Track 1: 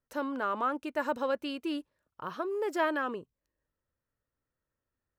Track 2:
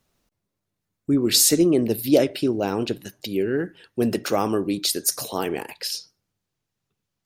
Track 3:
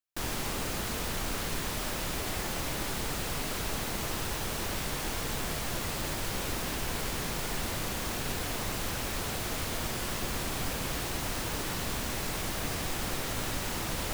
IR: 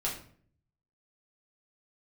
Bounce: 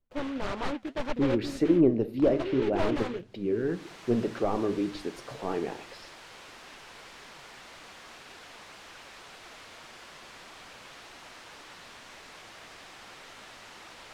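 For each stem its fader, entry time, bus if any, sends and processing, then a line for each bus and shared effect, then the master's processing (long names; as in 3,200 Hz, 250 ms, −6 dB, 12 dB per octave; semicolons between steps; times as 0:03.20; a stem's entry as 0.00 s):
−2.0 dB, 0.00 s, no send, short delay modulated by noise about 2,400 Hz, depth 0.19 ms
−9.5 dB, 0.10 s, send −14.5 dB, bass and treble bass −3 dB, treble −5 dB
0.0 dB, 0.00 s, no send, resonant band-pass 7,000 Hz, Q 0.57; automatic ducking −23 dB, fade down 0.55 s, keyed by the first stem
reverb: on, RT60 0.55 s, pre-delay 5 ms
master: mid-hump overdrive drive 13 dB, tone 2,800 Hz, clips at −13.5 dBFS; flanger 1.8 Hz, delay 2.1 ms, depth 7.8 ms, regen +68%; spectral tilt −4.5 dB per octave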